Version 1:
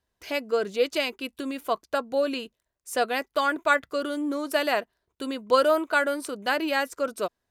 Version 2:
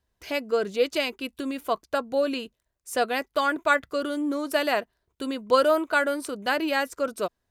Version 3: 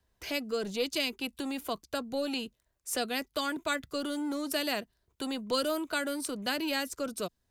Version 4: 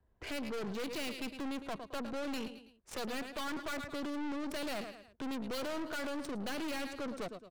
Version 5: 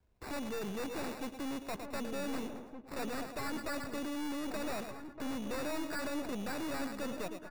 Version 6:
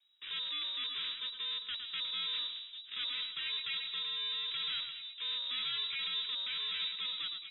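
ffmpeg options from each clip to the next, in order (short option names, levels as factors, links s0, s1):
-af "lowshelf=f=140:g=7"
-filter_complex "[0:a]acrossover=split=280|3000[s0][s1][s2];[s1]acompressor=threshold=0.00501:ratio=2[s3];[s0][s3][s2]amix=inputs=3:normalize=0,acrossover=split=370[s4][s5];[s4]asoftclip=type=hard:threshold=0.0106[s6];[s6][s5]amix=inputs=2:normalize=0,volume=1.26"
-af "adynamicsmooth=sensitivity=6.5:basefreq=1500,aecho=1:1:109|218|327:0.178|0.0676|0.0257,aeval=exprs='(tanh(126*val(0)+0.55)-tanh(0.55))/126':c=same,volume=1.78"
-filter_complex "[0:a]acrusher=samples=14:mix=1:aa=0.000001,asplit=2[s0][s1];[s1]adelay=1516,volume=0.447,highshelf=f=4000:g=-34.1[s2];[s0][s2]amix=inputs=2:normalize=0"
-af "lowpass=f=3300:t=q:w=0.5098,lowpass=f=3300:t=q:w=0.6013,lowpass=f=3300:t=q:w=0.9,lowpass=f=3300:t=q:w=2.563,afreqshift=-3900"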